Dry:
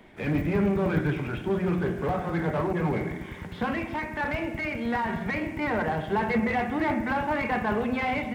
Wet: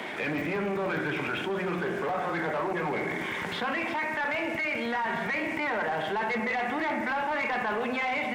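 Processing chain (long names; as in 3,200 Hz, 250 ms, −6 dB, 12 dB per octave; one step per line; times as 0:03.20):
meter weighting curve A
sine wavefolder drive 3 dB, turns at −16.5 dBFS
envelope flattener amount 70%
level −8.5 dB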